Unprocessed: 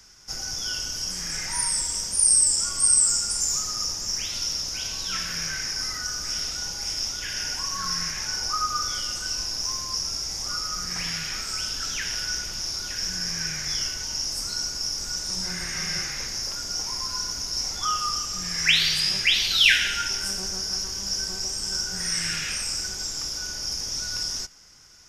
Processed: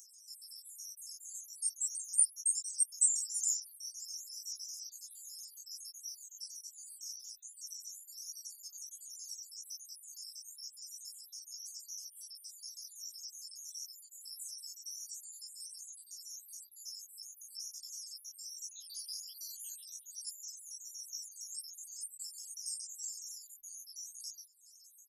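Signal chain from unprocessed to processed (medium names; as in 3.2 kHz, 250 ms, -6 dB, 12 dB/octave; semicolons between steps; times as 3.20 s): random holes in the spectrogram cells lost 74%; inverse Chebyshev high-pass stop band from 2.4 kHz, stop band 60 dB; comb 5.8 ms, depth 48%; upward compressor, threshold -47 dBFS; chorus voices 4, 1.3 Hz, delay 18 ms, depth 3 ms; trim +2 dB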